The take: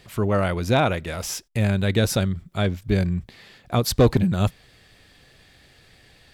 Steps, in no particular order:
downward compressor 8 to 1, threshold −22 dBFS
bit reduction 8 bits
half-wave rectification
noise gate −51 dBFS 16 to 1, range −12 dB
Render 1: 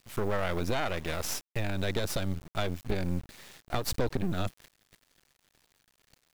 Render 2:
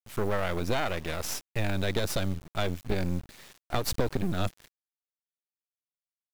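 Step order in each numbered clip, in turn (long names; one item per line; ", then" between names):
bit reduction, then downward compressor, then half-wave rectification, then noise gate
half-wave rectification, then downward compressor, then noise gate, then bit reduction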